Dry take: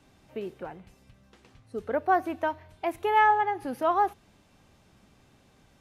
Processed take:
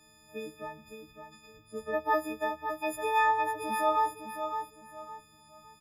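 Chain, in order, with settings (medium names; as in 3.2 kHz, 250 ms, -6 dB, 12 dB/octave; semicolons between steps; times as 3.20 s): partials quantised in pitch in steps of 6 st; feedback delay 560 ms, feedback 31%, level -7.5 dB; trim -5 dB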